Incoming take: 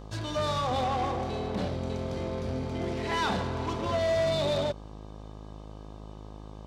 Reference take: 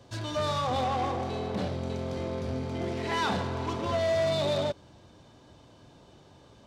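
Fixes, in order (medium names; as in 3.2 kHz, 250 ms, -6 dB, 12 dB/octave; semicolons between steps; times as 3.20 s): de-hum 52.5 Hz, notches 24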